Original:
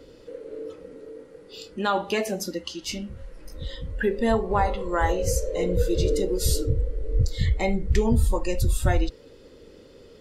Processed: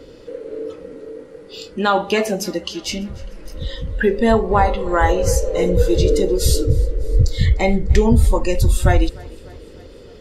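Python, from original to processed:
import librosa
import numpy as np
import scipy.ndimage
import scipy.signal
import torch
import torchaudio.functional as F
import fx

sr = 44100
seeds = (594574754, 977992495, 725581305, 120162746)

y = fx.high_shelf(x, sr, hz=8200.0, db=-4.5)
y = fx.echo_feedback(y, sr, ms=300, feedback_pct=59, wet_db=-23.0)
y = F.gain(torch.from_numpy(y), 7.5).numpy()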